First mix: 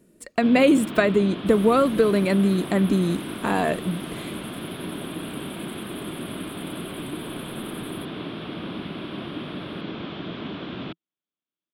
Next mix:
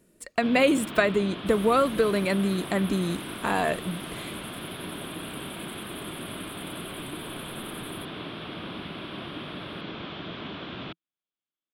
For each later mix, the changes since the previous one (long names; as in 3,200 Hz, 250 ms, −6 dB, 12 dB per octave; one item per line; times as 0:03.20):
master: add parametric band 250 Hz −6.5 dB 2.1 octaves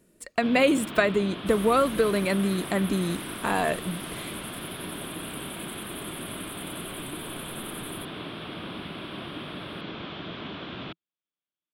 second sound +4.0 dB